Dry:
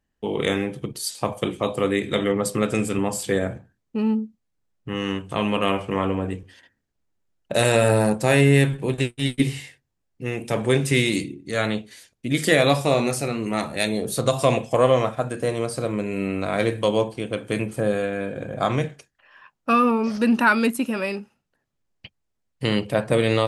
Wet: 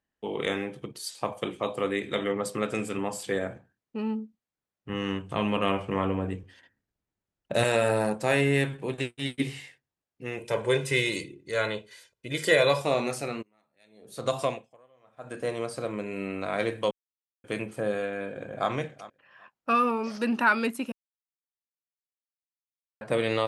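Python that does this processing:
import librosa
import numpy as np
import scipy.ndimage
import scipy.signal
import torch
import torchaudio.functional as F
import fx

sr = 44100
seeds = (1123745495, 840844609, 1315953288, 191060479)

y = fx.low_shelf(x, sr, hz=190.0, db=11.5, at=(4.89, 7.64))
y = fx.comb(y, sr, ms=2.0, depth=0.65, at=(10.38, 12.82))
y = fx.tremolo_db(y, sr, hz=fx.line((13.41, 0.55), (15.43, 1.2)), depth_db=38, at=(13.41, 15.43), fade=0.02)
y = fx.echo_throw(y, sr, start_s=18.14, length_s=0.56, ms=390, feedback_pct=15, wet_db=-17.0)
y = fx.bass_treble(y, sr, bass_db=-2, treble_db=5, at=(19.75, 20.25))
y = fx.edit(y, sr, fx.silence(start_s=16.91, length_s=0.53),
    fx.silence(start_s=20.92, length_s=2.09), tone=tone)
y = fx.highpass(y, sr, hz=1300.0, slope=6)
y = fx.tilt_eq(y, sr, slope=-3.0)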